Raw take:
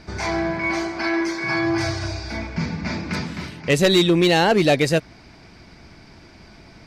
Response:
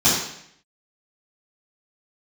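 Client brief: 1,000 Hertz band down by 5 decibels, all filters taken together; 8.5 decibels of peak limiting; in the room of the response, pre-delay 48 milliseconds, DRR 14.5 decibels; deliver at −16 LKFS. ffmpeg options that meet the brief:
-filter_complex "[0:a]equalizer=frequency=1000:width_type=o:gain=-7,alimiter=limit=-16.5dB:level=0:latency=1,asplit=2[link_01][link_02];[1:a]atrim=start_sample=2205,adelay=48[link_03];[link_02][link_03]afir=irnorm=-1:irlink=0,volume=-33.5dB[link_04];[link_01][link_04]amix=inputs=2:normalize=0,volume=9.5dB"

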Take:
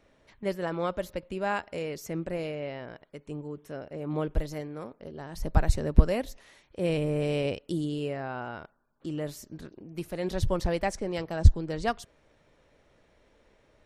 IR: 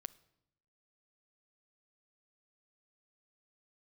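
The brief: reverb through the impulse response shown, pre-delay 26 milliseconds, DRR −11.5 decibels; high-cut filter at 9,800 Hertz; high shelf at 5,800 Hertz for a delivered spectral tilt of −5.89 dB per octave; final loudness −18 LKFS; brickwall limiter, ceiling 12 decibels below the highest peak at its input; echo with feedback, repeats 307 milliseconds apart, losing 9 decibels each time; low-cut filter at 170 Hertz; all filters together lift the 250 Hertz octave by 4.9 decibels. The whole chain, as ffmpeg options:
-filter_complex "[0:a]highpass=170,lowpass=9800,equalizer=frequency=250:width_type=o:gain=8.5,highshelf=frequency=5800:gain=6.5,alimiter=limit=-18.5dB:level=0:latency=1,aecho=1:1:307|614|921|1228:0.355|0.124|0.0435|0.0152,asplit=2[link_01][link_02];[1:a]atrim=start_sample=2205,adelay=26[link_03];[link_02][link_03]afir=irnorm=-1:irlink=0,volume=16dB[link_04];[link_01][link_04]amix=inputs=2:normalize=0,volume=1.5dB"

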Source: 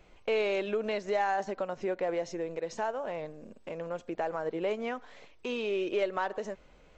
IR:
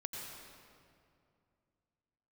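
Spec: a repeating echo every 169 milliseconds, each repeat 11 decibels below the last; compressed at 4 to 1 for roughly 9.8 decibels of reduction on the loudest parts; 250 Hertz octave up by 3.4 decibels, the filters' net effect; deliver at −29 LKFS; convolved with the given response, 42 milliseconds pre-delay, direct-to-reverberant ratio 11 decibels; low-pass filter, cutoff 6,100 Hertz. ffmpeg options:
-filter_complex "[0:a]lowpass=6100,equalizer=frequency=250:width_type=o:gain=5,acompressor=threshold=-36dB:ratio=4,aecho=1:1:169|338|507:0.282|0.0789|0.0221,asplit=2[link_01][link_02];[1:a]atrim=start_sample=2205,adelay=42[link_03];[link_02][link_03]afir=irnorm=-1:irlink=0,volume=-10.5dB[link_04];[link_01][link_04]amix=inputs=2:normalize=0,volume=10dB"

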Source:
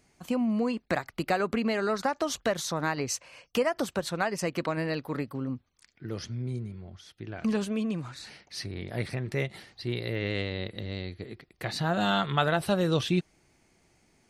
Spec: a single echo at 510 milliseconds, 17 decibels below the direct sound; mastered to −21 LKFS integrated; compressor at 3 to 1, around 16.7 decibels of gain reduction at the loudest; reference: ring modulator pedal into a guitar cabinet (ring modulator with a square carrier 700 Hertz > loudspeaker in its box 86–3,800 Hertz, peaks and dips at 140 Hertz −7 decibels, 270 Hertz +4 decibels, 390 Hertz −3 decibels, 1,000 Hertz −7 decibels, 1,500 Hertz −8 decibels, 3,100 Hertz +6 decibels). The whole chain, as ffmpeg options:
ffmpeg -i in.wav -af "acompressor=threshold=-45dB:ratio=3,aecho=1:1:510:0.141,aeval=exprs='val(0)*sgn(sin(2*PI*700*n/s))':channel_layout=same,highpass=86,equalizer=frequency=140:width_type=q:width=4:gain=-7,equalizer=frequency=270:width_type=q:width=4:gain=4,equalizer=frequency=390:width_type=q:width=4:gain=-3,equalizer=frequency=1000:width_type=q:width=4:gain=-7,equalizer=frequency=1500:width_type=q:width=4:gain=-8,equalizer=frequency=3100:width_type=q:width=4:gain=6,lowpass=frequency=3800:width=0.5412,lowpass=frequency=3800:width=1.3066,volume=24.5dB" out.wav

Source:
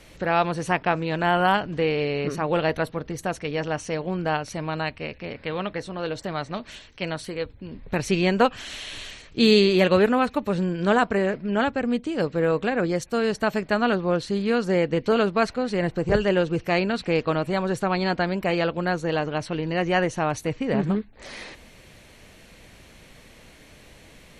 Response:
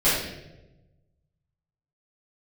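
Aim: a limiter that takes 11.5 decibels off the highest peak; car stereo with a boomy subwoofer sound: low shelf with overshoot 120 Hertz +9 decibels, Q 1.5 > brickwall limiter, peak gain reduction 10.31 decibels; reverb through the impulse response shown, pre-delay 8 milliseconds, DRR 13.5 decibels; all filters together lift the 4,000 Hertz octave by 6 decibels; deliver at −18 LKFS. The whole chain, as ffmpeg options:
-filter_complex "[0:a]equalizer=frequency=4000:width_type=o:gain=7.5,alimiter=limit=-13dB:level=0:latency=1,asplit=2[link_01][link_02];[1:a]atrim=start_sample=2205,adelay=8[link_03];[link_02][link_03]afir=irnorm=-1:irlink=0,volume=-30.5dB[link_04];[link_01][link_04]amix=inputs=2:normalize=0,lowshelf=frequency=120:width_type=q:width=1.5:gain=9,volume=12dB,alimiter=limit=-7.5dB:level=0:latency=1"

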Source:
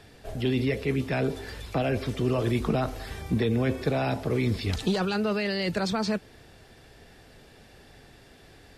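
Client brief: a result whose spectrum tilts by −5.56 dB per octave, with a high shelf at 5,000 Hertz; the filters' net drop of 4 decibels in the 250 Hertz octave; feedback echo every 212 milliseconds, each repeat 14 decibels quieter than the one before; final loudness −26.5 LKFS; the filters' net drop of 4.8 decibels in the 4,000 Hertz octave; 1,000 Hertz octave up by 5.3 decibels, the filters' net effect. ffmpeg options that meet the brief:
ffmpeg -i in.wav -af "equalizer=frequency=250:width_type=o:gain=-5.5,equalizer=frequency=1000:width_type=o:gain=8.5,equalizer=frequency=4000:width_type=o:gain=-3,highshelf=frequency=5000:gain=-8,aecho=1:1:212|424:0.2|0.0399,volume=2dB" out.wav

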